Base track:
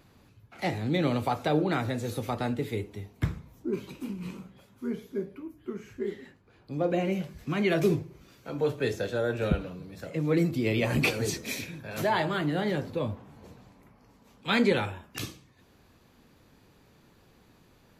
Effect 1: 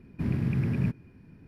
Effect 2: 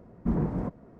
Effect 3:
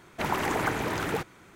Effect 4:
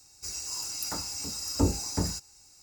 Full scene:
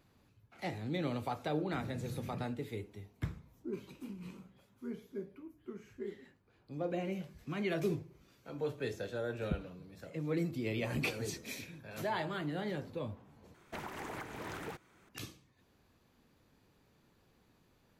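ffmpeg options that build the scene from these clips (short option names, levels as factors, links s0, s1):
-filter_complex "[0:a]volume=0.335[s0];[1:a]highpass=51[s1];[3:a]alimiter=limit=0.0708:level=0:latency=1:release=482[s2];[s0]asplit=2[s3][s4];[s3]atrim=end=13.544[s5];[s2]atrim=end=1.55,asetpts=PTS-STARTPTS,volume=0.335[s6];[s4]atrim=start=15.086[s7];[s1]atrim=end=1.47,asetpts=PTS-STARTPTS,volume=0.141,afade=t=in:d=0.004:c=hsin,afade=t=out:st=1.466:d=0.004:c=hsin,adelay=1530[s8];[s5][s6]acrossfade=d=0.004:c1=hsin:c2=hsin[s9];[s9][s7]acrossfade=d=0.004:c1=hsin:c2=hsin[s10];[s10][s8]amix=inputs=2:normalize=0"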